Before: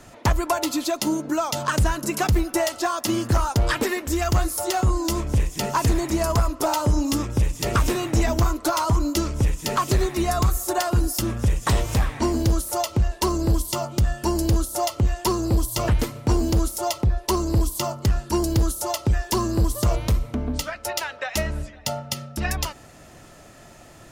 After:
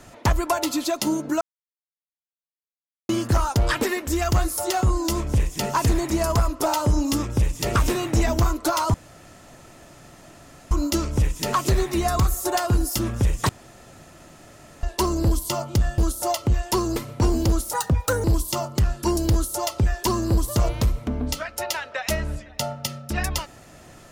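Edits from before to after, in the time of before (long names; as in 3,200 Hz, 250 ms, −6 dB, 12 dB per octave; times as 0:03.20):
0:01.41–0:03.09: silence
0:08.94: splice in room tone 1.77 s
0:11.72–0:13.06: fill with room tone
0:14.21–0:14.51: remove
0:15.49–0:16.03: remove
0:16.80–0:17.51: play speed 139%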